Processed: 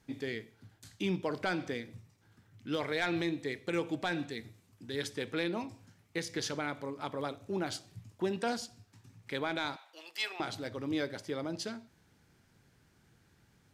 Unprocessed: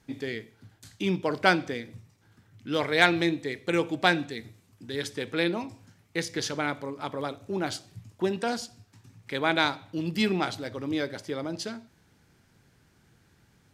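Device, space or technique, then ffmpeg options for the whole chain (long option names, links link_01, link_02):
soft clipper into limiter: -filter_complex "[0:a]asettb=1/sr,asplit=3[link_01][link_02][link_03];[link_01]atrim=end=9.764[link_04];[link_02]atrim=start=9.76:end=10.4,asetpts=PTS-STARTPTS,afade=type=in:duration=0.004:curve=qsin,afade=type=out:start_time=0.636:duration=0.004:curve=qsin,highpass=frequency=660:width=0.5412,highpass=frequency=660:width=1.3066[link_05];[link_03]atrim=start=10.396[link_06];[link_04][link_05]acrossfade=duration=0.004:curve1=hsin:curve2=qsin[link_07];[link_07][link_06]acrossfade=duration=0.004:curve1=qsin:curve2=hsin,asoftclip=type=tanh:threshold=-11dB,alimiter=limit=-18.5dB:level=0:latency=1:release=113,volume=-4dB"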